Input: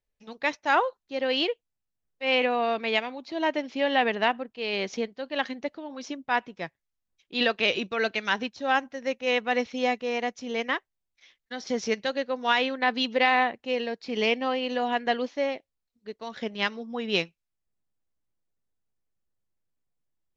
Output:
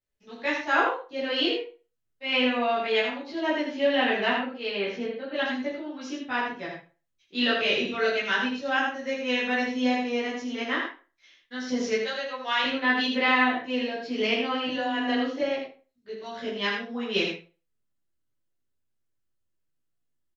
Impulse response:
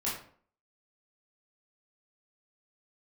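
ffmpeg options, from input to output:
-filter_complex "[0:a]asettb=1/sr,asplit=3[link_01][link_02][link_03];[link_01]atrim=end=4.684[link_04];[link_02]atrim=start=4.68:end=5.34,asetpts=PTS-STARTPTS,afade=type=in:duration=0.004:curve=qsin,afade=type=out:start_time=0.656:duration=0.004:curve=qsin,lowpass=2900[link_05];[link_03]atrim=start=5.336[link_06];[link_04][link_05]acrossfade=duration=0.004:curve1=hsin:curve2=qsin[link_07];[link_07][link_06]acrossfade=duration=0.004:curve1=qsin:curve2=hsin,equalizer=frequency=810:width=1.5:gain=-2.5,asettb=1/sr,asplit=3[link_08][link_09][link_10];[link_08]atrim=end=12.034[link_11];[link_09]atrim=start=12.03:end=12.64,asetpts=PTS-STARTPTS,afade=type=in:duration=0.004:curve=qsin,afade=type=out:start_time=0.606:duration=0.004:curve=qsin,highpass=610[link_12];[link_10]atrim=start=12.636[link_13];[link_11][link_12]acrossfade=duration=0.004:curve1=hsin:curve2=qsin[link_14];[link_14][link_13]acrossfade=duration=0.004:curve1=qsin:curve2=hsin,asettb=1/sr,asplit=3[link_15][link_16][link_17];[link_15]atrim=end=14.674[link_18];[link_16]atrim=start=14.67:end=15.41,asetpts=PTS-STARTPTS,afade=type=in:duration=0.004:curve=qsin,afade=type=out:start_time=0.736:duration=0.004:curve=qsin,afreqshift=15[link_19];[link_17]atrim=start=15.406[link_20];[link_18][link_19]acrossfade=duration=0.004:curve1=hsin:curve2=qsin[link_21];[link_21][link_20]acrossfade=duration=0.004:curve1=qsin:curve2=hsin,aecho=1:1:79:0.531[link_22];[1:a]atrim=start_sample=2205,asetrate=66150,aresample=44100[link_23];[link_22][link_23]afir=irnorm=-1:irlink=0,volume=-1.5dB"

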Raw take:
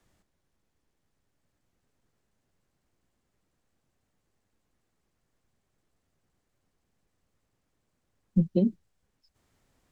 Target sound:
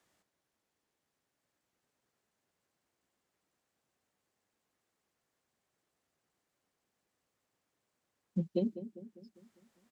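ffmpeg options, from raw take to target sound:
ffmpeg -i in.wav -filter_complex "[0:a]highpass=frequency=450:poles=1,asplit=2[link_01][link_02];[link_02]adelay=200,lowpass=frequency=940:poles=1,volume=-12dB,asplit=2[link_03][link_04];[link_04]adelay=200,lowpass=frequency=940:poles=1,volume=0.54,asplit=2[link_05][link_06];[link_06]adelay=200,lowpass=frequency=940:poles=1,volume=0.54,asplit=2[link_07][link_08];[link_08]adelay=200,lowpass=frequency=940:poles=1,volume=0.54,asplit=2[link_09][link_10];[link_10]adelay=200,lowpass=frequency=940:poles=1,volume=0.54,asplit=2[link_11][link_12];[link_12]adelay=200,lowpass=frequency=940:poles=1,volume=0.54[link_13];[link_01][link_03][link_05][link_07][link_09][link_11][link_13]amix=inputs=7:normalize=0,volume=-1.5dB" out.wav

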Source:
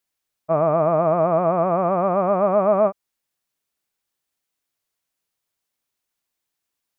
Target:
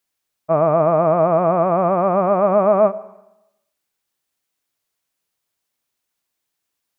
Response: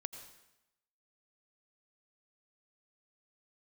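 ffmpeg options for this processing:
-filter_complex "[0:a]asplit=2[link_01][link_02];[link_02]highpass=55[link_03];[1:a]atrim=start_sample=2205[link_04];[link_03][link_04]afir=irnorm=-1:irlink=0,volume=-5dB[link_05];[link_01][link_05]amix=inputs=2:normalize=0"

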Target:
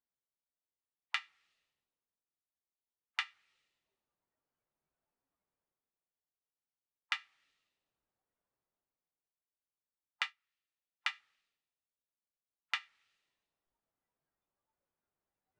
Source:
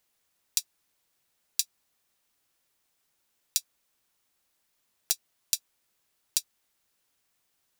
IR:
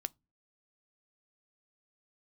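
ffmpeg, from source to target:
-af "areverse,acompressor=mode=upward:threshold=-46dB:ratio=2.5,areverse,afftdn=noise_reduction=31:noise_floor=-56,asetrate=22050,aresample=44100,lowpass=1100,volume=6.5dB"

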